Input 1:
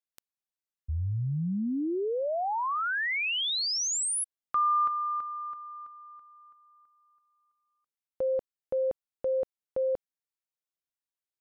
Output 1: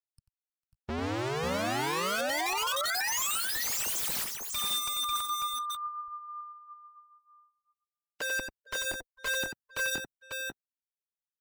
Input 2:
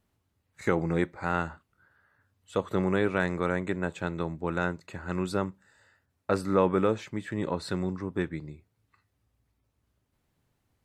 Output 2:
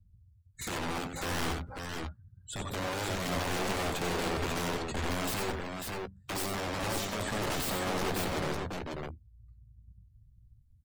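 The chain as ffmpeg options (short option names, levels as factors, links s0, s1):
-filter_complex "[0:a]acrossover=split=140|3600[s0][s1][s2];[s0]acontrast=59[s3];[s1]asubboost=boost=3:cutoff=200[s4];[s3][s4][s2]amix=inputs=3:normalize=0,aphaser=in_gain=1:out_gain=1:delay=4.2:decay=0.44:speed=0.51:type=sinusoidal,lowshelf=f=310:g=8.5,acompressor=threshold=0.0398:ratio=16:attack=1.4:release=25:knee=6:detection=rms,aexciter=amount=4.1:drive=1.2:freq=3400,aeval=exprs='(mod(29.9*val(0)+1,2)-1)/29.9':c=same,aecho=1:1:91|449|544|560:0.501|0.112|0.668|0.168,afftdn=nr=27:nf=-47"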